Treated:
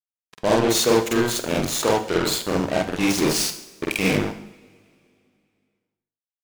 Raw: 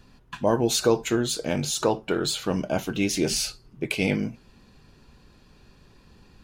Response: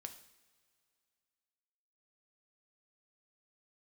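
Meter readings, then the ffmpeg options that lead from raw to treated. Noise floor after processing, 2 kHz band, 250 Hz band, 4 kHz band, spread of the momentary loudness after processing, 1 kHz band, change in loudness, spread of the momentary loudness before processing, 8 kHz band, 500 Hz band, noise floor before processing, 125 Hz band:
under -85 dBFS, +5.5 dB, +3.5 dB, +3.5 dB, 9 LU, +5.5 dB, +4.0 dB, 8 LU, +3.5 dB, +4.0 dB, -56 dBFS, +1.5 dB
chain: -filter_complex "[0:a]highpass=f=100:p=1,acrusher=bits=3:mix=0:aa=0.5,asplit=2[s0][s1];[1:a]atrim=start_sample=2205,adelay=47[s2];[s1][s2]afir=irnorm=-1:irlink=0,volume=2.24[s3];[s0][s3]amix=inputs=2:normalize=0"

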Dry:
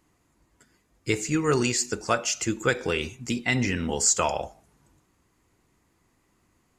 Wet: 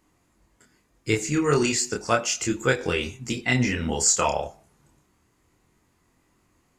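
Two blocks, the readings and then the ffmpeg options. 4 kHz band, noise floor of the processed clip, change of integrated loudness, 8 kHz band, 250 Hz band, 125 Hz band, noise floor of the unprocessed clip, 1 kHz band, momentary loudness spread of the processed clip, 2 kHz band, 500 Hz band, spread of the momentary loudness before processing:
+1.5 dB, -67 dBFS, +1.5 dB, +1.5 dB, +1.5 dB, +2.5 dB, -69 dBFS, +2.0 dB, 9 LU, +1.5 dB, +2.0 dB, 8 LU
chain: -af "flanger=delay=22.5:depth=5.4:speed=0.33,volume=1.68"

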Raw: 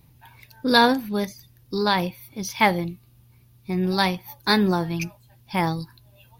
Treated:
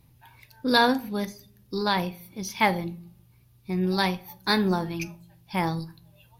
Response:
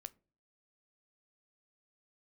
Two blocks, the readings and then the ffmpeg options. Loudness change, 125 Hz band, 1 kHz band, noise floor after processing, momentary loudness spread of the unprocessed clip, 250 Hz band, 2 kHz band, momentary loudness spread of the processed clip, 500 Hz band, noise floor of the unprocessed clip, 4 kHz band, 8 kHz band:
-3.0 dB, -3.0 dB, -3.5 dB, -59 dBFS, 15 LU, -3.0 dB, -3.0 dB, 14 LU, -3.5 dB, -56 dBFS, -3.5 dB, -3.5 dB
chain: -filter_complex "[1:a]atrim=start_sample=2205,asetrate=27342,aresample=44100[s0];[0:a][s0]afir=irnorm=-1:irlink=0"

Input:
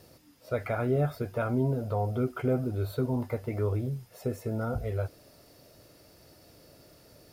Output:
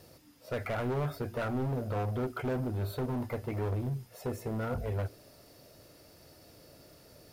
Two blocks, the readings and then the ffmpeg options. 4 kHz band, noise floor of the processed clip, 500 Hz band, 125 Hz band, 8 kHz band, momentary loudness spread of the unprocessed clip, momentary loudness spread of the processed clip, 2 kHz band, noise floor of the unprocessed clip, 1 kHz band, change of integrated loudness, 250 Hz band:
+2.0 dB, -58 dBFS, -4.5 dB, -3.5 dB, no reading, 7 LU, 5 LU, -0.5 dB, -58 dBFS, -1.5 dB, -3.5 dB, -4.0 dB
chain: -af "asoftclip=type=hard:threshold=0.0355,bandreject=f=57.18:t=h:w=4,bandreject=f=114.36:t=h:w=4,bandreject=f=171.54:t=h:w=4,bandreject=f=228.72:t=h:w=4,bandreject=f=285.9:t=h:w=4,bandreject=f=343.08:t=h:w=4,bandreject=f=400.26:t=h:w=4"

